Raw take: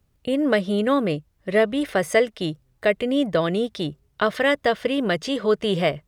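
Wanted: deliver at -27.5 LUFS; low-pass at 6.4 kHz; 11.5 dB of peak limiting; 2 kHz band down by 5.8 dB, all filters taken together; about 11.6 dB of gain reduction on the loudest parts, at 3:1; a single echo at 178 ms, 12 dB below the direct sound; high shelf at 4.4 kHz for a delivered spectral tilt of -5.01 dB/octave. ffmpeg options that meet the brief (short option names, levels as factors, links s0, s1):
-af "lowpass=6400,equalizer=f=2000:t=o:g=-7.5,highshelf=f=4400:g=3.5,acompressor=threshold=0.0282:ratio=3,alimiter=level_in=1.58:limit=0.0631:level=0:latency=1,volume=0.631,aecho=1:1:178:0.251,volume=2.99"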